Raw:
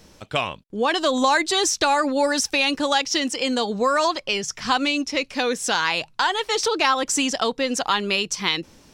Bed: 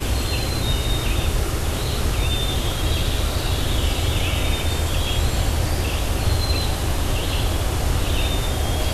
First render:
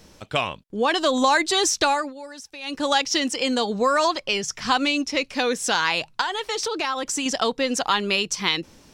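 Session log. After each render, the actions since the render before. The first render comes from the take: 1.86–2.89 s: dip -18 dB, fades 0.28 s; 6.21–7.26 s: compression 2.5:1, threshold -24 dBFS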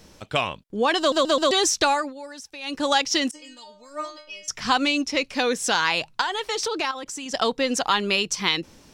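0.99 s: stutter in place 0.13 s, 4 plays; 3.31–4.48 s: inharmonic resonator 300 Hz, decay 0.44 s, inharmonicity 0.002; 6.91–7.34 s: level held to a coarse grid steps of 17 dB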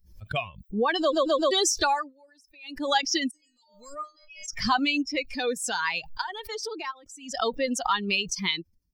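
expander on every frequency bin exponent 2; swell ahead of each attack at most 100 dB/s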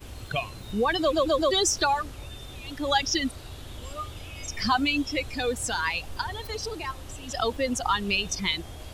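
add bed -19.5 dB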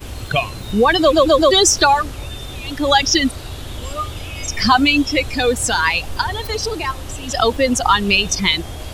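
trim +11 dB; peak limiter -1 dBFS, peak gain reduction 2 dB

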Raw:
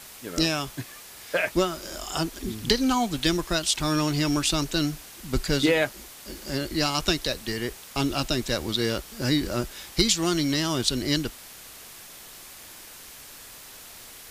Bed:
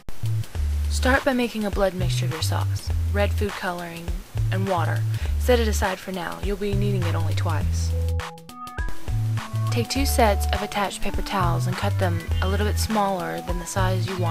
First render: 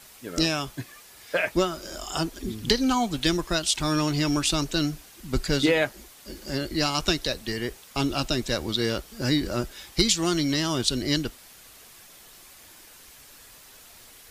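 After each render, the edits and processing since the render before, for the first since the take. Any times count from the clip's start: noise reduction 6 dB, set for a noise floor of -45 dBFS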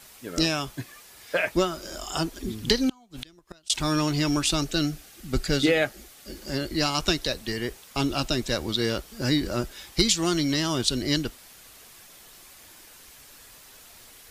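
2.80–3.70 s: inverted gate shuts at -16 dBFS, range -31 dB; 4.57–6.34 s: Butterworth band-stop 990 Hz, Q 6.2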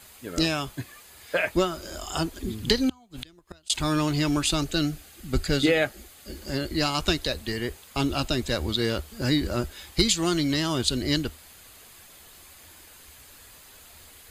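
peaking EQ 76 Hz +12 dB 0.38 oct; band-stop 5.6 kHz, Q 6.7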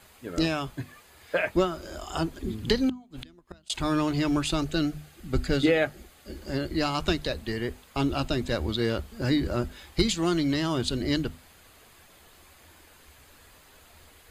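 treble shelf 3.3 kHz -9.5 dB; hum notches 50/100/150/200/250 Hz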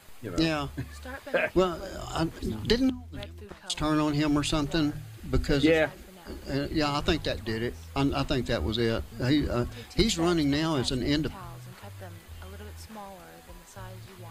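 add bed -21 dB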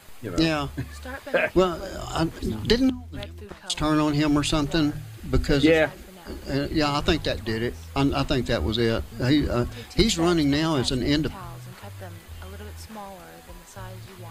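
trim +4 dB

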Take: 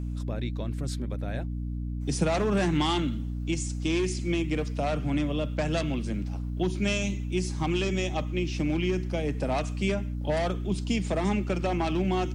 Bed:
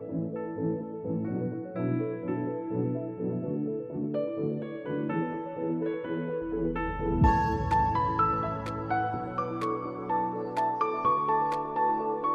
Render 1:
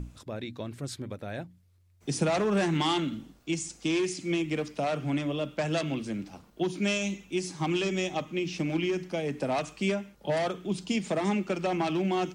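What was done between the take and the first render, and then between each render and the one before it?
hum notches 60/120/180/240/300 Hz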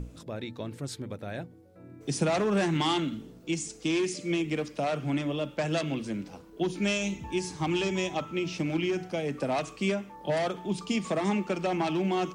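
add bed -20 dB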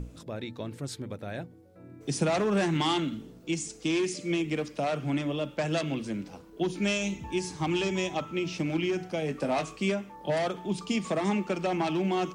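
9.20–9.77 s: doubling 19 ms -7.5 dB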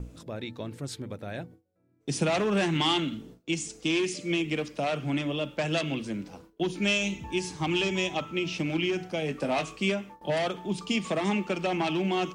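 gate with hold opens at -38 dBFS; dynamic bell 2.9 kHz, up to +6 dB, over -48 dBFS, Q 1.8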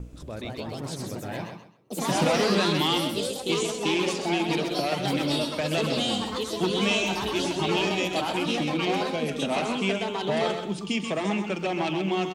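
ever faster or slower copies 223 ms, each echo +3 st, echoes 3; feedback delay 130 ms, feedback 24%, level -7.5 dB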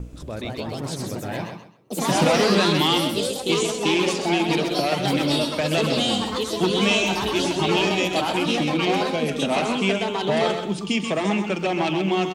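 trim +4.5 dB

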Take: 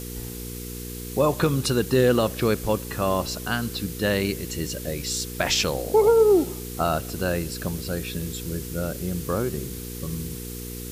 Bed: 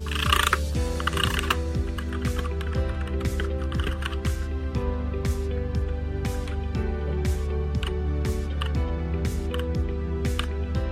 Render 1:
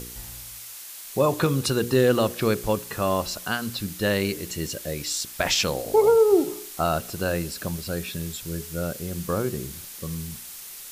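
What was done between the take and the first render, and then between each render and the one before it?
de-hum 60 Hz, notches 8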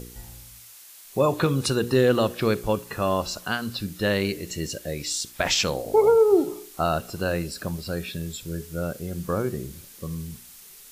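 noise print and reduce 7 dB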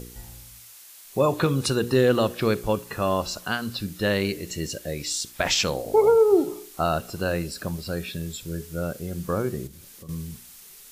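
9.67–10.09 s: compression 4:1, threshold -42 dBFS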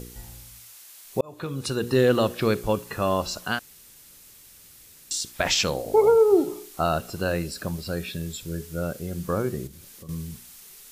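1.21–2.02 s: fade in linear; 3.59–5.11 s: room tone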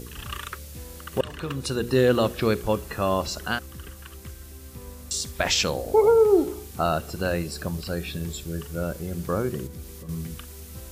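add bed -14.5 dB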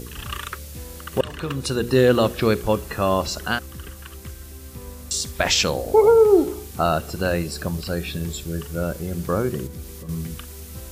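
trim +3.5 dB

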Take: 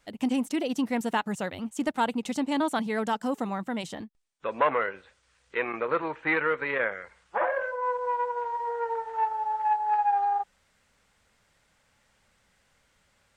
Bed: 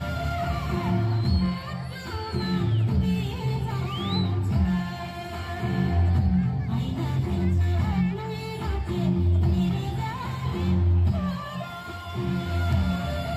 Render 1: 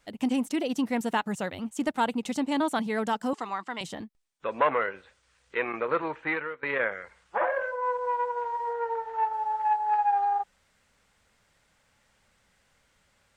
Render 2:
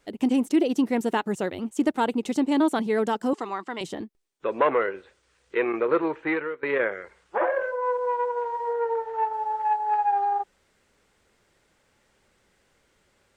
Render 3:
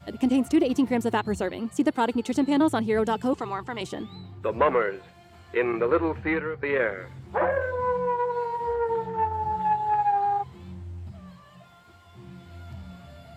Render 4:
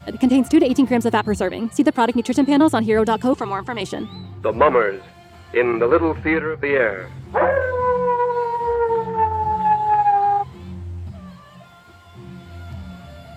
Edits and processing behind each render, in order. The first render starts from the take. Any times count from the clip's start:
3.33–3.81 s: cabinet simulation 430–8600 Hz, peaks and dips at 550 Hz -9 dB, 1.1 kHz +7 dB, 2 kHz +3 dB, 3 kHz +4 dB, 4.7 kHz +8 dB; 6.14–6.63 s: fade out linear, to -22.5 dB; 8.73–9.33 s: distance through air 61 m
peaking EQ 370 Hz +11.5 dB 0.78 oct
add bed -17.5 dB
trim +7 dB

